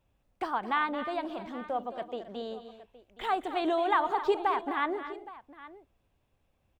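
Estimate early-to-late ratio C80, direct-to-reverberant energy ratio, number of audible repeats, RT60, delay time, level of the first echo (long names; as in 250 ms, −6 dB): no reverb audible, no reverb audible, 3, no reverb audible, 220 ms, −12.5 dB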